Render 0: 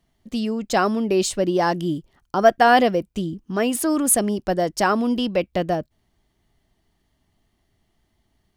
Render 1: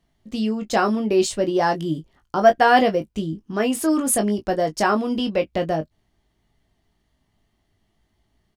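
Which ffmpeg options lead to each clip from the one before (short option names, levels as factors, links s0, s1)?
-filter_complex "[0:a]highshelf=f=10000:g=-6.5,asplit=2[s0][s1];[s1]aecho=0:1:19|32:0.473|0.158[s2];[s0][s2]amix=inputs=2:normalize=0,volume=0.891"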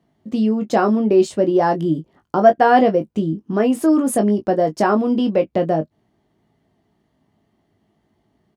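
-filter_complex "[0:a]highpass=150,tiltshelf=f=1400:g=7,asplit=2[s0][s1];[s1]acompressor=threshold=0.0708:ratio=6,volume=0.944[s2];[s0][s2]amix=inputs=2:normalize=0,volume=0.708"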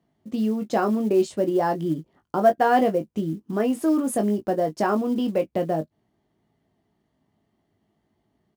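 -af "acrusher=bits=8:mode=log:mix=0:aa=0.000001,volume=0.501"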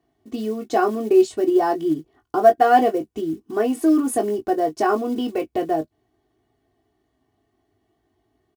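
-af "aecho=1:1:2.7:0.96"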